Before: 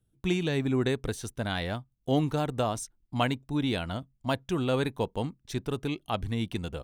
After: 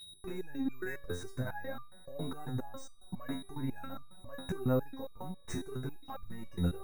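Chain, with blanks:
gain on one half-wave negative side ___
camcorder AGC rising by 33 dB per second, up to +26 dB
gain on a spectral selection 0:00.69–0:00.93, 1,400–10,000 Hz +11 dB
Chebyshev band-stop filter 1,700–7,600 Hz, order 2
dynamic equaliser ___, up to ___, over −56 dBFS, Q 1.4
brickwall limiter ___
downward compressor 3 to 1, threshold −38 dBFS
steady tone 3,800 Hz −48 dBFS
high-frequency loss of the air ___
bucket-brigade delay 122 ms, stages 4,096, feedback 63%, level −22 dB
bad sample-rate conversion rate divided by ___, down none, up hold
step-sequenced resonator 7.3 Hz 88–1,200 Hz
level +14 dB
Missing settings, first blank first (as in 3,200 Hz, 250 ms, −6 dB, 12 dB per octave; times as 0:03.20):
−3 dB, 3,500 Hz, −4 dB, −24 dBFS, 100 metres, 3×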